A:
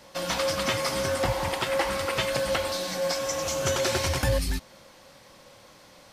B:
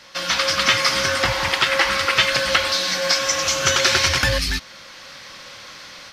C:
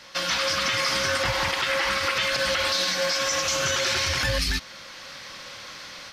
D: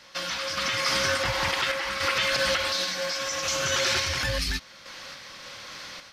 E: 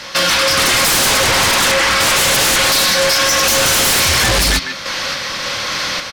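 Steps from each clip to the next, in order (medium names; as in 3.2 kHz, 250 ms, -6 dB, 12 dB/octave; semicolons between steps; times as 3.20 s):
high-order bell 2.7 kHz +11.5 dB 2.7 oct; level rider gain up to 7 dB; trim -1.5 dB
peak limiter -14 dBFS, peak gain reduction 10.5 dB; trim -1 dB
random-step tremolo
speakerphone echo 150 ms, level -12 dB; sine folder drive 13 dB, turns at -14 dBFS; trim +4 dB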